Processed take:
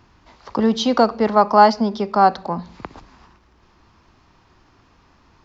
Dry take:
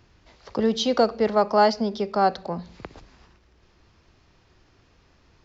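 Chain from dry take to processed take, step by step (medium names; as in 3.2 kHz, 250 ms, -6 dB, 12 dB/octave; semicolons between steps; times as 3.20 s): ten-band graphic EQ 250 Hz +5 dB, 500 Hz -3 dB, 1 kHz +9 dB; trim +2 dB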